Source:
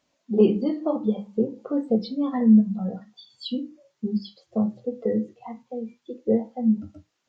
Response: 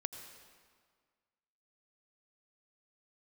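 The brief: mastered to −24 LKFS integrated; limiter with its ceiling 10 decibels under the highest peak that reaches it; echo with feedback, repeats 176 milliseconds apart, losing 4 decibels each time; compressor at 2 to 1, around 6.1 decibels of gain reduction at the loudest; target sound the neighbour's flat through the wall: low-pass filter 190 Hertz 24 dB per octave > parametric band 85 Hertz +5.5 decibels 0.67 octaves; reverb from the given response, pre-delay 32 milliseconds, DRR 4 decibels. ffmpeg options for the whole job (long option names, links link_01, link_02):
-filter_complex "[0:a]acompressor=threshold=-22dB:ratio=2,alimiter=limit=-22dB:level=0:latency=1,aecho=1:1:176|352|528|704|880|1056|1232|1408|1584:0.631|0.398|0.25|0.158|0.0994|0.0626|0.0394|0.0249|0.0157,asplit=2[link_01][link_02];[1:a]atrim=start_sample=2205,adelay=32[link_03];[link_02][link_03]afir=irnorm=-1:irlink=0,volume=-3dB[link_04];[link_01][link_04]amix=inputs=2:normalize=0,lowpass=frequency=190:width=0.5412,lowpass=frequency=190:width=1.3066,equalizer=frequency=85:width_type=o:width=0.67:gain=5.5,volume=11.5dB"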